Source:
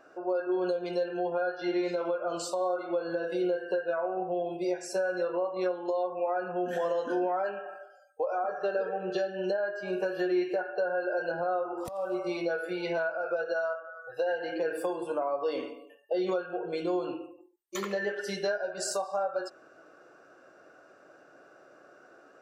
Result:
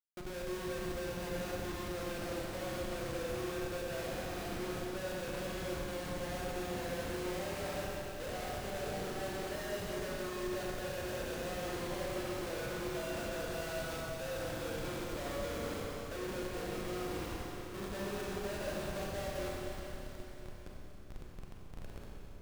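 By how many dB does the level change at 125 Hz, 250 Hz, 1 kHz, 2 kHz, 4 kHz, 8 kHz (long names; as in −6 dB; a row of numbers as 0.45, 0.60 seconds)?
+6.0 dB, −6.5 dB, −9.0 dB, −6.5 dB, 0.0 dB, can't be measured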